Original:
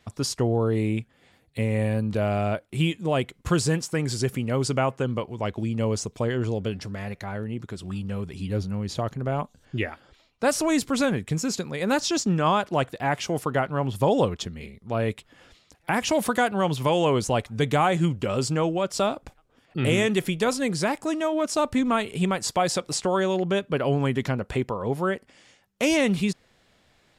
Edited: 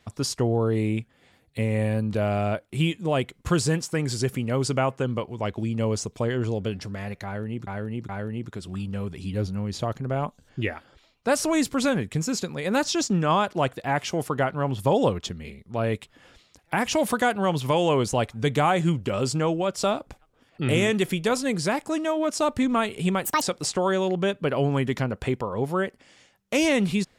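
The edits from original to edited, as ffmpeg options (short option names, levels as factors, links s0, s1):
-filter_complex "[0:a]asplit=5[s0][s1][s2][s3][s4];[s0]atrim=end=7.672[s5];[s1]atrim=start=7.248:end=7.672[s6];[s2]atrim=start=7.248:end=22.404[s7];[s3]atrim=start=22.4:end=22.7,asetpts=PTS-STARTPTS,asetrate=74970,aresample=44100,atrim=end_sample=7782,asetpts=PTS-STARTPTS[s8];[s4]atrim=start=22.696[s9];[s5][s6]acrossfade=d=0.004:c1=hsin:c2=hsin[s10];[s10][s7]acrossfade=d=0.004:c1=hsin:c2=hsin[s11];[s11][s8]acrossfade=d=0.004:c1=hsin:c2=hsin[s12];[s12][s9]acrossfade=d=0.004:c1=hsin:c2=hsin"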